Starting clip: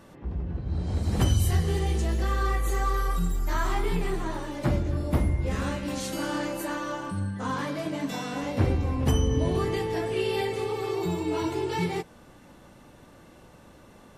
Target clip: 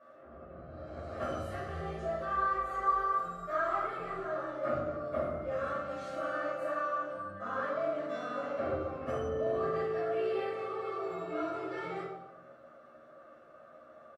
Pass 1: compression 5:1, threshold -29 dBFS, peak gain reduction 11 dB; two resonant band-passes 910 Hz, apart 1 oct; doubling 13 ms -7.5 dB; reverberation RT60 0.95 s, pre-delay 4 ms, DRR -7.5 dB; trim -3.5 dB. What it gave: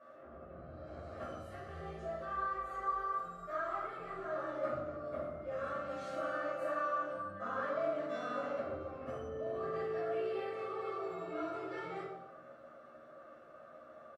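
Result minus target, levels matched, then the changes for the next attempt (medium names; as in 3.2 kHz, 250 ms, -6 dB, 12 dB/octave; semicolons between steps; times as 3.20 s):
compression: peak gain reduction +11 dB
remove: compression 5:1, threshold -29 dBFS, peak gain reduction 11 dB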